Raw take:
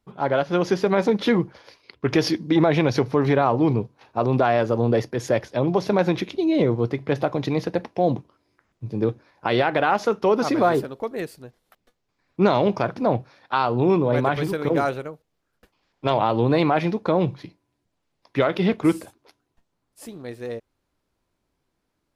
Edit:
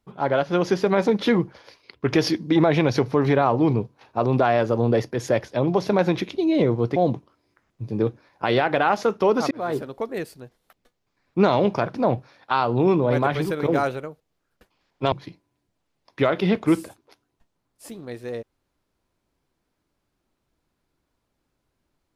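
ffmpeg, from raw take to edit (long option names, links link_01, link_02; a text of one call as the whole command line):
ffmpeg -i in.wav -filter_complex "[0:a]asplit=4[link_01][link_02][link_03][link_04];[link_01]atrim=end=6.962[link_05];[link_02]atrim=start=7.978:end=10.53,asetpts=PTS-STARTPTS,afade=type=out:start_time=2.548:duration=0.004:curve=hsin[link_06];[link_03]atrim=start=10.53:end=16.142,asetpts=PTS-STARTPTS,afade=type=in:duration=0.38[link_07];[link_04]atrim=start=17.288[link_08];[link_06][link_07]concat=n=2:v=0:a=1[link_09];[link_05][link_09]acrossfade=duration=0.004:curve1=hsin:curve2=hsin[link_10];[link_10][link_08]acrossfade=duration=0.004:curve1=hsin:curve2=hsin" out.wav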